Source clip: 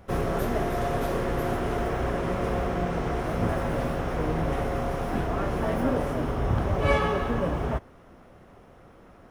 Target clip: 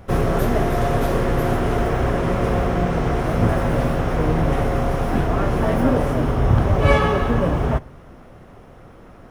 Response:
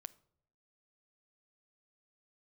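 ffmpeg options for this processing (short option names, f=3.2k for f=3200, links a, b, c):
-filter_complex "[0:a]asplit=2[a][b];[1:a]atrim=start_sample=2205,lowshelf=f=220:g=10[c];[b][c]afir=irnorm=-1:irlink=0,volume=-1dB[d];[a][d]amix=inputs=2:normalize=0,volume=3dB"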